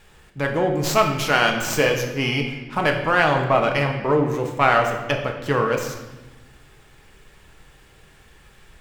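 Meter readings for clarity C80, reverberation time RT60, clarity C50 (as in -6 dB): 8.5 dB, 1.1 s, 6.5 dB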